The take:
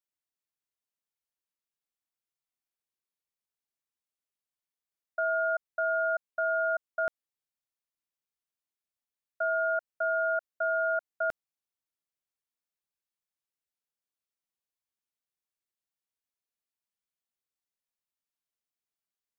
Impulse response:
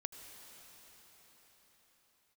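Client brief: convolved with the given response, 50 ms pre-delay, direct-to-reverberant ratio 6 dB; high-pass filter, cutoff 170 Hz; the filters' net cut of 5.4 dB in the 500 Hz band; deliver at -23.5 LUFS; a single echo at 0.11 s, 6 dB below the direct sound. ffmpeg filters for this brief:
-filter_complex "[0:a]highpass=170,equalizer=f=500:t=o:g=-8.5,aecho=1:1:110:0.501,asplit=2[a][b];[1:a]atrim=start_sample=2205,adelay=50[c];[b][c]afir=irnorm=-1:irlink=0,volume=-4dB[d];[a][d]amix=inputs=2:normalize=0,volume=5dB"

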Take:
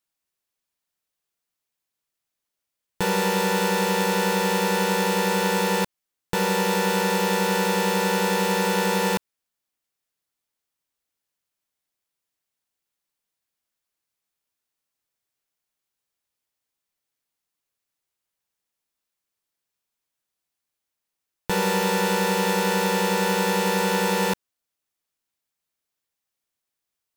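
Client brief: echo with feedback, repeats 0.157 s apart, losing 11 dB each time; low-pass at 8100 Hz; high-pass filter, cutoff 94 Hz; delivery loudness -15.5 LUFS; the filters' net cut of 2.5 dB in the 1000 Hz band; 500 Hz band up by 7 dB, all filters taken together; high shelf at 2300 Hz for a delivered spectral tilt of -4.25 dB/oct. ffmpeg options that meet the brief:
-af "highpass=94,lowpass=8.1k,equalizer=f=500:t=o:g=8.5,equalizer=f=1k:t=o:g=-6,highshelf=f=2.3k:g=3.5,aecho=1:1:157|314|471:0.282|0.0789|0.0221,volume=4dB"

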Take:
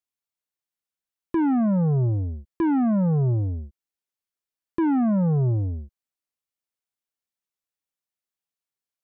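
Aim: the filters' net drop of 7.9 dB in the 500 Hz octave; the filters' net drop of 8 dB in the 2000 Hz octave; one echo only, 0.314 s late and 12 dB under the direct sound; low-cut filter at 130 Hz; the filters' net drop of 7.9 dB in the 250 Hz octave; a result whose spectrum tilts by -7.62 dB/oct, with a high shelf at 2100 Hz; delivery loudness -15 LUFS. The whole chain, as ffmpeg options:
-af "highpass=130,equalizer=f=250:t=o:g=-8,equalizer=f=500:t=o:g=-7,equalizer=f=2k:t=o:g=-8.5,highshelf=f=2.1k:g=-4.5,aecho=1:1:314:0.251,volume=15dB"

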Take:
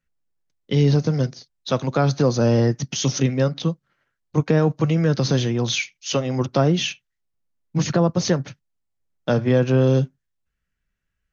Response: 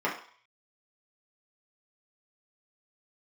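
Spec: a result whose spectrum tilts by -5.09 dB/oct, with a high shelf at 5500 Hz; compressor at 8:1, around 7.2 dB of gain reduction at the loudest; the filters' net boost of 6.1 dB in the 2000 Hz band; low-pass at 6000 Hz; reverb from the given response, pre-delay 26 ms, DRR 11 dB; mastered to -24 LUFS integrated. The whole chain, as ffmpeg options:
-filter_complex "[0:a]lowpass=6k,equalizer=f=2k:t=o:g=7.5,highshelf=f=5.5k:g=4.5,acompressor=threshold=-20dB:ratio=8,asplit=2[a][b];[1:a]atrim=start_sample=2205,adelay=26[c];[b][c]afir=irnorm=-1:irlink=0,volume=-22.5dB[d];[a][d]amix=inputs=2:normalize=0,volume=1.5dB"

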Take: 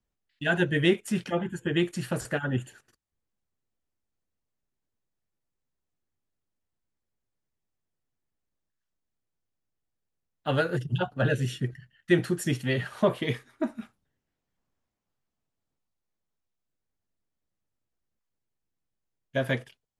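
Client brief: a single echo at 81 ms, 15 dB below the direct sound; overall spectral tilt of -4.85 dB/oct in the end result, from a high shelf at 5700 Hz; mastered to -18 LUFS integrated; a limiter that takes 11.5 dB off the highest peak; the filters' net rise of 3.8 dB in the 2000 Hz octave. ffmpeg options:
-af "equalizer=f=2k:t=o:g=4,highshelf=f=5.7k:g=8,alimiter=limit=-19dB:level=0:latency=1,aecho=1:1:81:0.178,volume=13dB"

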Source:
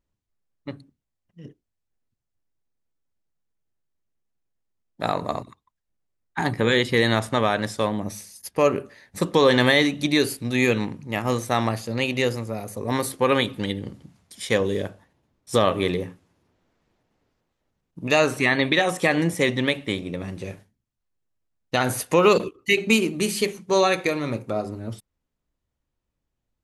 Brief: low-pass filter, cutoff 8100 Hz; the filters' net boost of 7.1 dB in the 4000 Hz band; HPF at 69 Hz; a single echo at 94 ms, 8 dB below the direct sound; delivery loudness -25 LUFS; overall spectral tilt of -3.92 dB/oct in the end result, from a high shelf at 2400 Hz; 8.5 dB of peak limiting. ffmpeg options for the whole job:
-af "highpass=69,lowpass=8.1k,highshelf=f=2.4k:g=3,equalizer=f=4k:t=o:g=6,alimiter=limit=-8.5dB:level=0:latency=1,aecho=1:1:94:0.398,volume=-2.5dB"

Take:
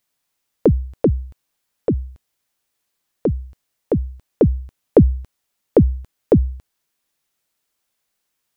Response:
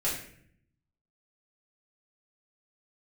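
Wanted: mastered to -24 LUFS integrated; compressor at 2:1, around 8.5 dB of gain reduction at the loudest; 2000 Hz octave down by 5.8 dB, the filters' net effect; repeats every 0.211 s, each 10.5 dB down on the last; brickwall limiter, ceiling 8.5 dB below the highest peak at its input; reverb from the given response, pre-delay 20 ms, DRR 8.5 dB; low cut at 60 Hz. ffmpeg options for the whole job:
-filter_complex "[0:a]highpass=60,equalizer=f=2k:t=o:g=-8,acompressor=threshold=-23dB:ratio=2,alimiter=limit=-14.5dB:level=0:latency=1,aecho=1:1:211|422|633:0.299|0.0896|0.0269,asplit=2[a][b];[1:a]atrim=start_sample=2205,adelay=20[c];[b][c]afir=irnorm=-1:irlink=0,volume=-16dB[d];[a][d]amix=inputs=2:normalize=0,volume=5.5dB"

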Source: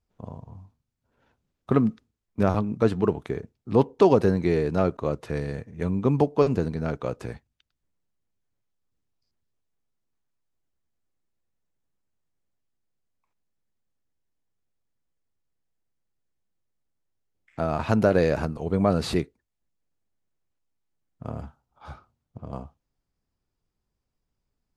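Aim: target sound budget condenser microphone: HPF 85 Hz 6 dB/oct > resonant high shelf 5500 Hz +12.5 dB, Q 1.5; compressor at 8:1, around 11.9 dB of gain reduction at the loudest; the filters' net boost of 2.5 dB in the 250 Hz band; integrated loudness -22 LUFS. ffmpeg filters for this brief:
-af "equalizer=f=250:t=o:g=4,acompressor=threshold=-24dB:ratio=8,highpass=f=85:p=1,highshelf=f=5.5k:t=q:w=1.5:g=12.5,volume=10dB"

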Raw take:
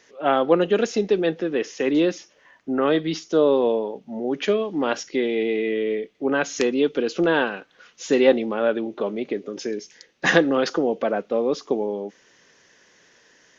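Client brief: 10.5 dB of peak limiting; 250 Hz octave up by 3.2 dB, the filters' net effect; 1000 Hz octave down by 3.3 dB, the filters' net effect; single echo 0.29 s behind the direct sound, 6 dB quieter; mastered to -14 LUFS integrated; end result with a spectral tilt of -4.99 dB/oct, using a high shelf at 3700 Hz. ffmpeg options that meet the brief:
-af "equalizer=f=250:t=o:g=4.5,equalizer=f=1k:t=o:g=-4.5,highshelf=f=3.7k:g=-6,alimiter=limit=-13dB:level=0:latency=1,aecho=1:1:290:0.501,volume=9dB"

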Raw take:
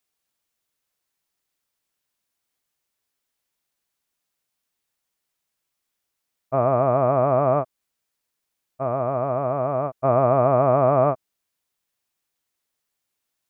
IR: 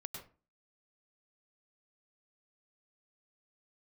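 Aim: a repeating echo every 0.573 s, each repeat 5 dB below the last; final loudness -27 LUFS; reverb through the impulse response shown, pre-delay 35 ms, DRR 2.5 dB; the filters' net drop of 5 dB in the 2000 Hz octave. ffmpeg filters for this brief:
-filter_complex "[0:a]equalizer=f=2k:t=o:g=-7.5,aecho=1:1:573|1146|1719|2292|2865|3438|4011:0.562|0.315|0.176|0.0988|0.0553|0.031|0.0173,asplit=2[a][b];[1:a]atrim=start_sample=2205,adelay=35[c];[b][c]afir=irnorm=-1:irlink=0,volume=0.5dB[d];[a][d]amix=inputs=2:normalize=0,volume=-7.5dB"

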